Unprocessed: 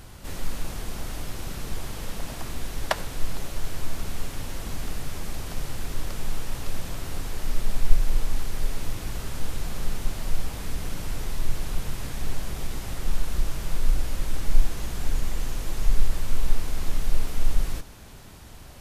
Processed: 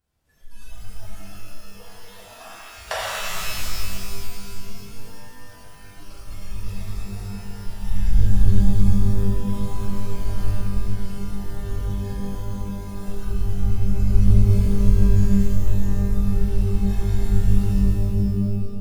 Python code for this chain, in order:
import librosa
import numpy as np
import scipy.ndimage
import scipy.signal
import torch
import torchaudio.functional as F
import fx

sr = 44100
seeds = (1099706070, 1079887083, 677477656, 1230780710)

y = fx.cheby_harmonics(x, sr, harmonics=(6,), levels_db=(-26,), full_scale_db=-1.5)
y = fx.noise_reduce_blind(y, sr, reduce_db=27)
y = fx.tremolo_random(y, sr, seeds[0], hz=3.5, depth_pct=55)
y = fx.rev_shimmer(y, sr, seeds[1], rt60_s=2.3, semitones=12, shimmer_db=-2, drr_db=-9.0)
y = F.gain(torch.from_numpy(y), -5.5).numpy()